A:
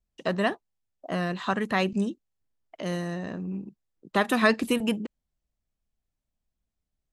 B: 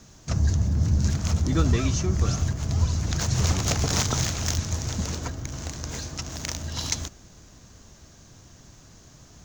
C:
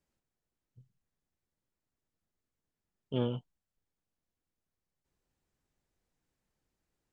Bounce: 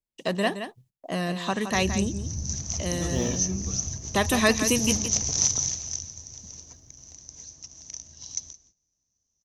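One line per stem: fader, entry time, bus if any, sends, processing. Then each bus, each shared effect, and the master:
0.0 dB, 0.00 s, no send, echo send -9.5 dB, high shelf 3900 Hz +10.5 dB
5.49 s -11 dB -> 6.17 s -22 dB, 1.45 s, no send, echo send -19.5 dB, synth low-pass 6000 Hz, resonance Q 14
+2.5 dB, 0.00 s, no send, no echo send, short-mantissa float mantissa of 4-bit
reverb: off
echo: echo 0.169 s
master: gate -58 dBFS, range -16 dB; bell 1400 Hz -8 dB 0.44 oct

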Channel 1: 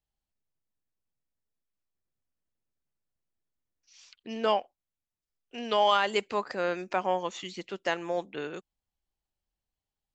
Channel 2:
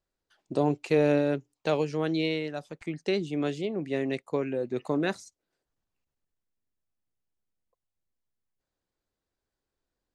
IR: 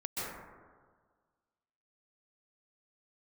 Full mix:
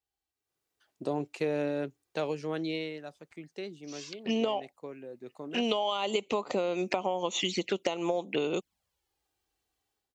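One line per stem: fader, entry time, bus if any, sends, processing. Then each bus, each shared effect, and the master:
+2.5 dB, 0.00 s, no send, compressor, threshold -31 dBFS, peak gain reduction 11.5 dB; envelope flanger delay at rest 2.6 ms, full sweep at -36 dBFS; AGC gain up to 10.5 dB
-4.0 dB, 0.50 s, no send, auto duck -9 dB, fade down 1.30 s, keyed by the first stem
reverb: off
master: HPF 53 Hz; low shelf 110 Hz -9.5 dB; compressor 10:1, threshold -25 dBFS, peak gain reduction 8 dB

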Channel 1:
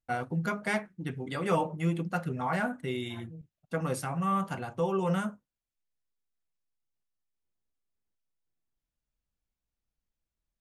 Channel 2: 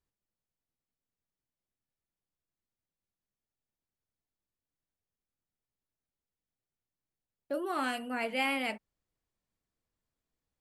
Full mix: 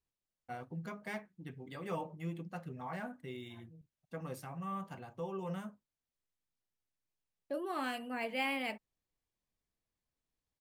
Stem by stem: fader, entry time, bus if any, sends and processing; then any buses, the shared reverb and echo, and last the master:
-11.5 dB, 0.40 s, no send, dry
-4.0 dB, 0.00 s, no send, dry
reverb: off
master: notch 1400 Hz, Q 10; decimation joined by straight lines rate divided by 2×

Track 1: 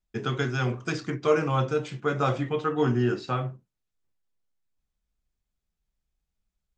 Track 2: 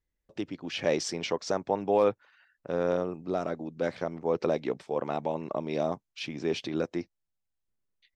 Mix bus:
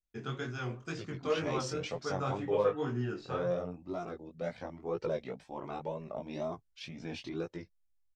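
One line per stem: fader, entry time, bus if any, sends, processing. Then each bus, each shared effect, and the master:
-7.5 dB, 0.00 s, no send, dry
-0.5 dB, 0.60 s, no send, low shelf 90 Hz +11.5 dB; cascading flanger rising 1.2 Hz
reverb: off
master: chorus 2 Hz, delay 17 ms, depth 5.9 ms

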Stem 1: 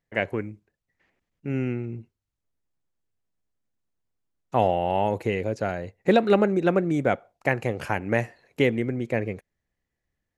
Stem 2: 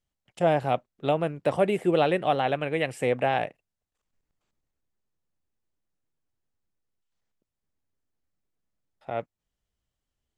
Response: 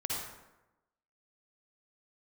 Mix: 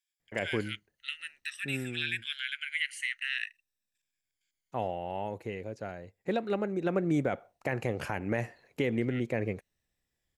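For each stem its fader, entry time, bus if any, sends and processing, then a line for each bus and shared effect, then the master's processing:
1.21 s -3 dB -> 1.98 s -12 dB -> 6.6 s -12 dB -> 7.14 s -2.5 dB, 0.20 s, no send, dry
+0.5 dB, 0.00 s, no send, moving spectral ripple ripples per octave 1.8, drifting -0.49 Hz, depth 12 dB; steep high-pass 1600 Hz 72 dB/oct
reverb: off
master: limiter -18.5 dBFS, peak gain reduction 8.5 dB

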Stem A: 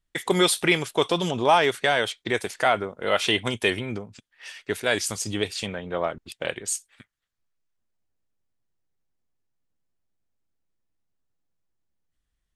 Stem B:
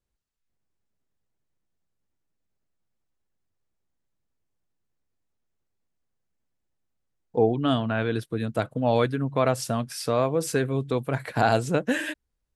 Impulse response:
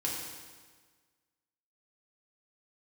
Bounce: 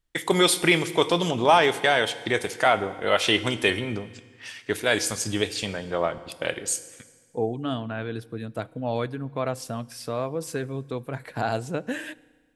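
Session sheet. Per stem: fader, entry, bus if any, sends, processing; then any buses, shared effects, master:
-0.5 dB, 0.00 s, send -14 dB, dry
-6.0 dB, 0.00 s, send -23.5 dB, dry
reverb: on, RT60 1.5 s, pre-delay 3 ms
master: dry

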